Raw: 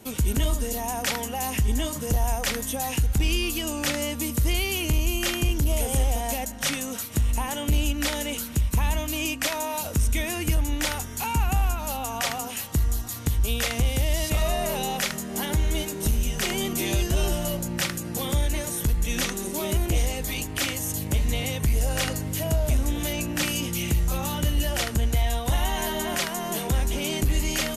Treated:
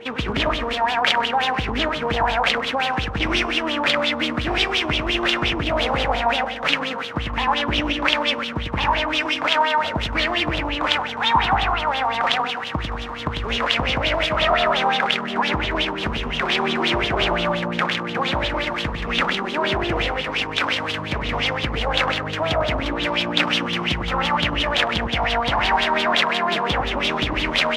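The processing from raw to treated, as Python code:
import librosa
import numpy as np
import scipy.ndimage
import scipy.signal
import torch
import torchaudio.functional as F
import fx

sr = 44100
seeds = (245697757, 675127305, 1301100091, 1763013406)

p1 = fx.self_delay(x, sr, depth_ms=0.31)
p2 = fx.highpass(p1, sr, hz=300.0, slope=6)
p3 = p2 + fx.echo_feedback(p2, sr, ms=98, feedback_pct=36, wet_db=-7.0, dry=0)
p4 = fx.filter_lfo_lowpass(p3, sr, shape='sine', hz=5.7, low_hz=970.0, high_hz=3500.0, q=4.7)
p5 = p4 + 10.0 ** (-45.0 / 20.0) * np.sin(2.0 * np.pi * 470.0 * np.arange(len(p4)) / sr)
y = F.gain(torch.from_numpy(p5), 6.5).numpy()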